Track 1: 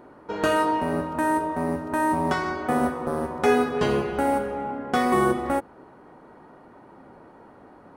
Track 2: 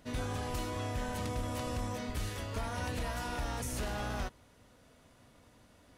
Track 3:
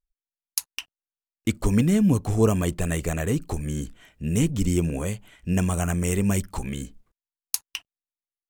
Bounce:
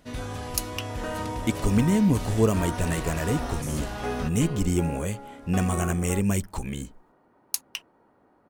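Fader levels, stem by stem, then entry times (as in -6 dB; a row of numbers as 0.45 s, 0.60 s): -13.0 dB, +2.5 dB, -1.5 dB; 0.60 s, 0.00 s, 0.00 s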